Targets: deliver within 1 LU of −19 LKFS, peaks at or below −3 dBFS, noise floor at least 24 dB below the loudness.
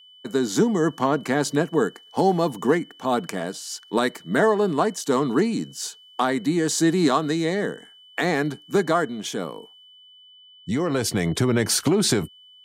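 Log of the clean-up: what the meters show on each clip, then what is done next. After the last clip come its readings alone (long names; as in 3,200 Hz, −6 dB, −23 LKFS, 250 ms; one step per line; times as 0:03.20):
interfering tone 3,000 Hz; level of the tone −48 dBFS; integrated loudness −23.0 LKFS; sample peak −8.0 dBFS; target loudness −19.0 LKFS
→ notch filter 3,000 Hz, Q 30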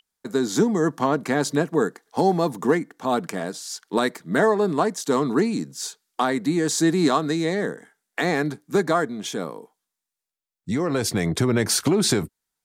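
interfering tone none found; integrated loudness −23.0 LKFS; sample peak −8.5 dBFS; target loudness −19.0 LKFS
→ level +4 dB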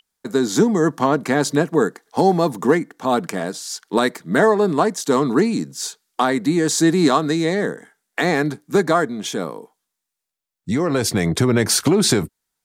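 integrated loudness −19.0 LKFS; sample peak −4.5 dBFS; background noise floor −82 dBFS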